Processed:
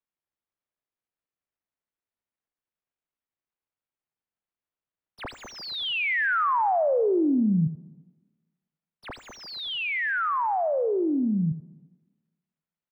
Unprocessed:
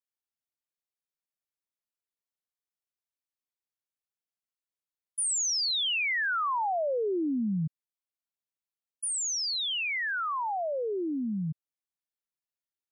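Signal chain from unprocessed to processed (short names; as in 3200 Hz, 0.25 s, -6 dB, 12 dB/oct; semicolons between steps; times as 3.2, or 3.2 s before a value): median filter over 5 samples; air absorption 380 m; echo 81 ms -11.5 dB; on a send at -21 dB: reverb RT60 1.3 s, pre-delay 90 ms; on the sum: gain +7 dB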